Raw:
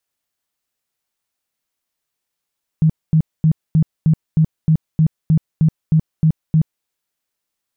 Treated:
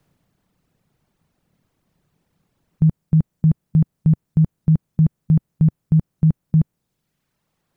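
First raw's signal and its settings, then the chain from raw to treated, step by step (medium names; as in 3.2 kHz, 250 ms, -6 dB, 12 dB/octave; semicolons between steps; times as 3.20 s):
tone bursts 158 Hz, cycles 12, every 0.31 s, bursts 13, -9 dBFS
spectral levelling over time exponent 0.6; reverb removal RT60 1.7 s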